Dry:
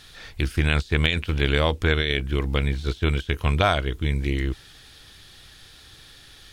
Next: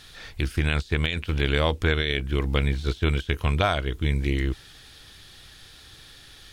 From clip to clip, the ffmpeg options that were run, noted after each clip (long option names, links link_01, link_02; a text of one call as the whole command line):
ffmpeg -i in.wav -af "alimiter=limit=-9dB:level=0:latency=1:release=373" out.wav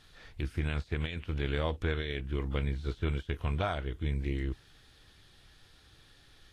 ffmpeg -i in.wav -af "highshelf=frequency=2400:gain=-9,volume=-8dB" -ar 44100 -c:a libvorbis -b:a 32k out.ogg